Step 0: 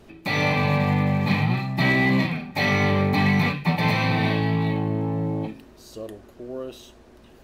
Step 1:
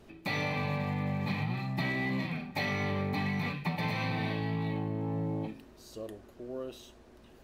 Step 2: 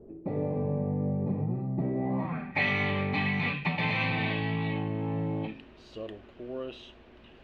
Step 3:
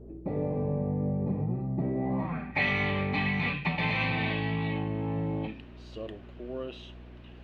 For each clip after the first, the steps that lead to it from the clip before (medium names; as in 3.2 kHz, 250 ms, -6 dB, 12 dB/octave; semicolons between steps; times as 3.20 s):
compression, threshold -23 dBFS, peak gain reduction 7.5 dB; trim -6 dB
low-pass sweep 450 Hz -> 2.9 kHz, 1.93–2.67 s; trim +2 dB
hum 60 Hz, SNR 17 dB